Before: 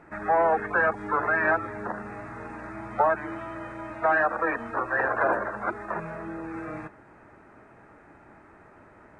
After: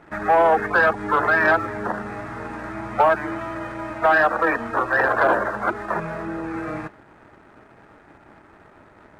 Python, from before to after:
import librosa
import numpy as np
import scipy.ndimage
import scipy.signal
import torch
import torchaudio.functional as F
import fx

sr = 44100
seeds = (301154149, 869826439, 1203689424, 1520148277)

y = fx.leveller(x, sr, passes=1)
y = y * librosa.db_to_amplitude(3.0)